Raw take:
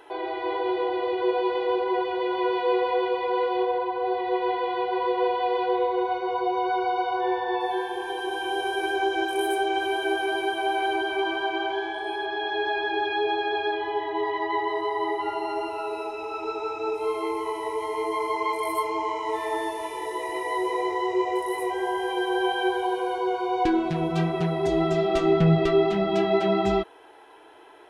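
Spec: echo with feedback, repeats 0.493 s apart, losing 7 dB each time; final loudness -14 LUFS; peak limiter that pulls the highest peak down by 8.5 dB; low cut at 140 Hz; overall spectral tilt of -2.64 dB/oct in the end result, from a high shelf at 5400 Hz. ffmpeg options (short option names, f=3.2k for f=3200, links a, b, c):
-af "highpass=140,highshelf=f=5.4k:g=7,alimiter=limit=-18.5dB:level=0:latency=1,aecho=1:1:493|986|1479|1972|2465:0.447|0.201|0.0905|0.0407|0.0183,volume=12.5dB"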